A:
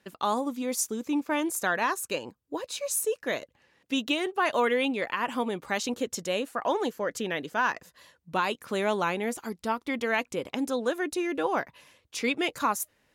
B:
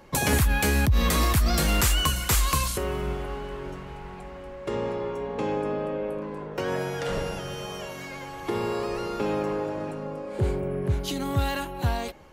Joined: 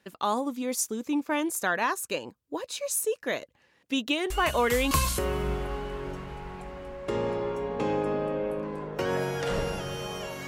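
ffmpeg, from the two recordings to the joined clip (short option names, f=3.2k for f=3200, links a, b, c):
-filter_complex "[1:a]asplit=2[a][b];[0:a]apad=whole_dur=10.47,atrim=end=10.47,atrim=end=4.912[c];[b]atrim=start=2.498:end=8.06[d];[a]atrim=start=1.89:end=2.5,asetpts=PTS-STARTPTS,volume=-11dB,afade=t=in:d=0.004:c=hsin,afade=t=out:st=0.606:d=0.004:c=hsin,adelay=4300[e];[c][d]acrossfade=d=0.004:c1=hsin:c2=hsin[f];[f][e]amix=inputs=2:normalize=0"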